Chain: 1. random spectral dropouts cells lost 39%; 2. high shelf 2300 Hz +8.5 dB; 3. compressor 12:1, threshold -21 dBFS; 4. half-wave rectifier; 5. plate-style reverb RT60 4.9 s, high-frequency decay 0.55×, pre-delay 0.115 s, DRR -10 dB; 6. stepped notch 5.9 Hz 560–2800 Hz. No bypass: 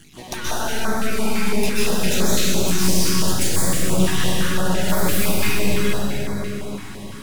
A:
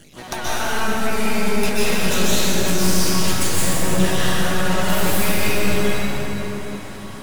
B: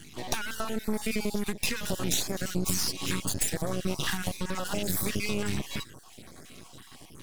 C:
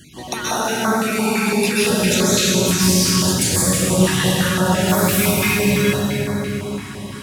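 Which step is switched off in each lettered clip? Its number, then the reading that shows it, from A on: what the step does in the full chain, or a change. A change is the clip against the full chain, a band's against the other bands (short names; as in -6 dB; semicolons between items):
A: 6, 1 kHz band +2.5 dB; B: 5, momentary loudness spread change +11 LU; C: 4, crest factor change +3.5 dB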